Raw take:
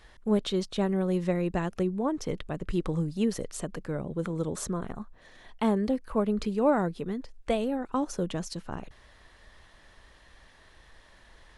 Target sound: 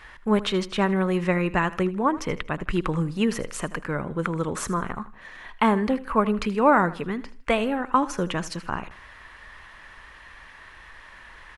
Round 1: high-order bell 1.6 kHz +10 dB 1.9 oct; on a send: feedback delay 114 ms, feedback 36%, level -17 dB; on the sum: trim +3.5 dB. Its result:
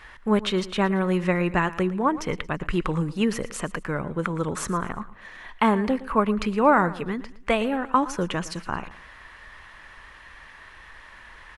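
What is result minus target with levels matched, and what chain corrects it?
echo 35 ms late
high-order bell 1.6 kHz +10 dB 1.9 oct; on a send: feedback delay 79 ms, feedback 36%, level -17 dB; on the sum: trim +3.5 dB

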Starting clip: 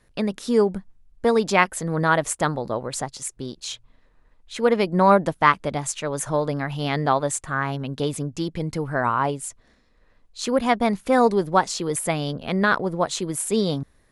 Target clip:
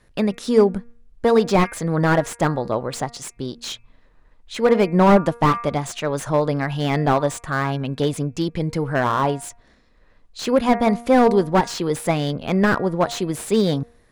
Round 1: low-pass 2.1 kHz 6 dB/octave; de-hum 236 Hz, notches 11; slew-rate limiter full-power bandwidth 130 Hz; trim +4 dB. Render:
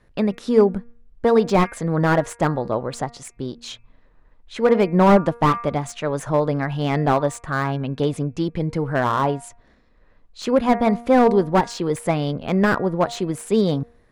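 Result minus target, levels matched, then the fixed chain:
8 kHz band -4.0 dB
low-pass 8.2 kHz 6 dB/octave; de-hum 236 Hz, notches 11; slew-rate limiter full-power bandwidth 130 Hz; trim +4 dB

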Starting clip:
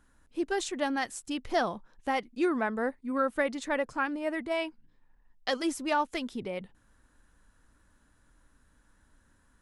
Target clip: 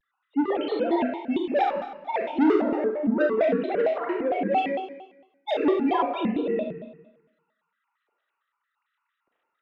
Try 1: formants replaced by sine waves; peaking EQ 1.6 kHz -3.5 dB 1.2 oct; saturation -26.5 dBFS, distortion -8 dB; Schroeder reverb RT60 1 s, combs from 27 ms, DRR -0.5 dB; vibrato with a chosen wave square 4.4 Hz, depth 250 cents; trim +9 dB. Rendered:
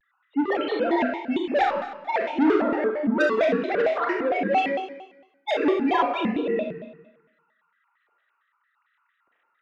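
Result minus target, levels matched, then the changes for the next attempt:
2 kHz band +5.5 dB
change: peaking EQ 1.6 kHz -14.5 dB 1.2 oct

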